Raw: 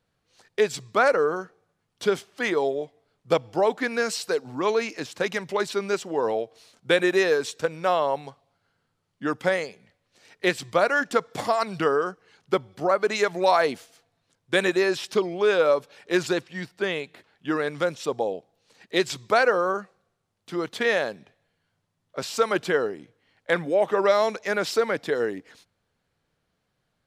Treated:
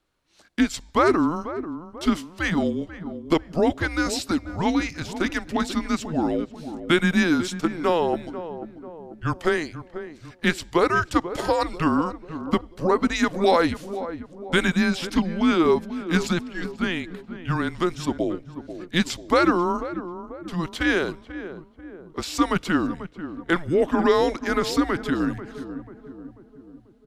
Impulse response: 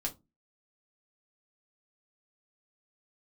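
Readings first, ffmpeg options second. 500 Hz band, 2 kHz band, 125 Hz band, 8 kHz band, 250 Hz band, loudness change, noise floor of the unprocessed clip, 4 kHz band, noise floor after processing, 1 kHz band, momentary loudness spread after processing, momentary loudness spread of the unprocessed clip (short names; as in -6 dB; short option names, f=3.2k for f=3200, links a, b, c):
-2.0 dB, 0.0 dB, +9.0 dB, +1.0 dB, +9.0 dB, +1.0 dB, -76 dBFS, +1.5 dB, -51 dBFS, +1.0 dB, 16 LU, 12 LU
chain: -filter_complex "[0:a]lowshelf=f=94:g=-9.5,afreqshift=-170,asplit=2[a][b];[b]adelay=490,lowpass=f=1k:p=1,volume=-11dB,asplit=2[c][d];[d]adelay=490,lowpass=f=1k:p=1,volume=0.54,asplit=2[e][f];[f]adelay=490,lowpass=f=1k:p=1,volume=0.54,asplit=2[g][h];[h]adelay=490,lowpass=f=1k:p=1,volume=0.54,asplit=2[i][j];[j]adelay=490,lowpass=f=1k:p=1,volume=0.54,asplit=2[k][l];[l]adelay=490,lowpass=f=1k:p=1,volume=0.54[m];[a][c][e][g][i][k][m]amix=inputs=7:normalize=0,volume=1.5dB"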